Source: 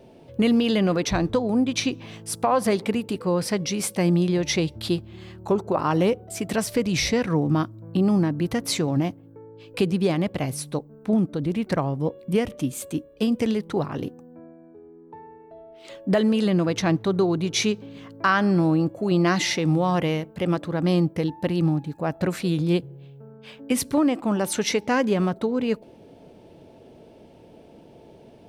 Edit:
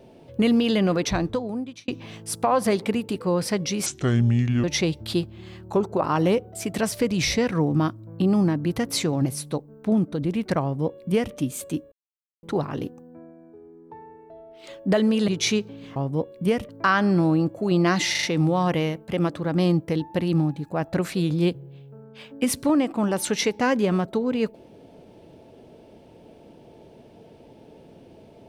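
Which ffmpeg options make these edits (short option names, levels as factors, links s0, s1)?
-filter_complex "[0:a]asplit=13[s0][s1][s2][s3][s4][s5][s6][s7][s8][s9][s10][s11][s12];[s0]atrim=end=1.88,asetpts=PTS-STARTPTS,afade=t=out:st=1.07:d=0.81[s13];[s1]atrim=start=1.88:end=3.864,asetpts=PTS-STARTPTS,afade=t=in:d=0.004:c=hsin[s14];[s2]atrim=start=3.86:end=4.39,asetpts=PTS-STARTPTS,asetrate=29988,aresample=44100,atrim=end_sample=34372,asetpts=PTS-STARTPTS[s15];[s3]atrim=start=4.386:end=9.012[s16];[s4]atrim=start=10.468:end=13.13,asetpts=PTS-STARTPTS,afade=t=out:st=2.658:d=0.004:c=hsin[s17];[s5]atrim=start=13.13:end=13.64,asetpts=PTS-STARTPTS,volume=0[s18];[s6]atrim=start=13.64:end=16.492,asetpts=PTS-STARTPTS,afade=t=in:d=0.004:c=hsin[s19];[s7]atrim=start=17.408:end=18.092[s20];[s8]atrim=start=11.828:end=12.562[s21];[s9]atrim=start=18.088:end=19.552[s22];[s10]atrim=start=19.508:end=19.552[s23];[s11]atrim=start=19.508:end=19.552[s24];[s12]atrim=start=19.508[s25];[s13][s14]concat=n=2:v=0:a=1[s26];[s26][s15]acrossfade=d=0.004:c1=hsin:c2=hsin[s27];[s27][s16]acrossfade=d=0.004:c1=hsin:c2=hsin[s28];[s17][s18][s19]concat=n=3:v=0:a=1[s29];[s28][s29]acrossfade=d=0.004:c1=hsin:c2=hsin[s30];[s30][s20]acrossfade=d=0.004:c1=hsin:c2=hsin[s31];[s31][s21]acrossfade=d=0.004:c1=hsin:c2=hsin[s32];[s32][s22]acrossfade=d=0.004:c1=hsin:c2=hsin[s33];[s33][s23]acrossfade=d=0.004:c1=hsin:c2=hsin[s34];[s34][s24]acrossfade=d=0.004:c1=hsin:c2=hsin[s35];[s35][s25]acrossfade=d=0.004:c1=hsin:c2=hsin"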